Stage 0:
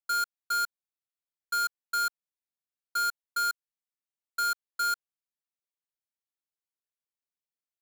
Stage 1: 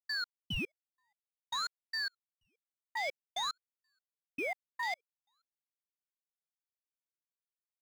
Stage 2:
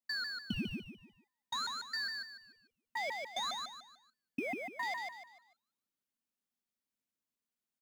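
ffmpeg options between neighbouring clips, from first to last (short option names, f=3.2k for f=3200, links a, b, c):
-filter_complex "[0:a]asplit=2[a][b];[b]adelay=478.1,volume=-27dB,highshelf=f=4k:g=-10.8[c];[a][c]amix=inputs=2:normalize=0,afwtdn=0.0158,aeval=exprs='val(0)*sin(2*PI*1800*n/s+1800*0.8/0.53*sin(2*PI*0.53*n/s))':c=same,volume=-4dB"
-af "equalizer=f=230:t=o:w=0.78:g=15,acompressor=threshold=-34dB:ratio=6,aecho=1:1:148|296|444|592:0.631|0.215|0.0729|0.0248"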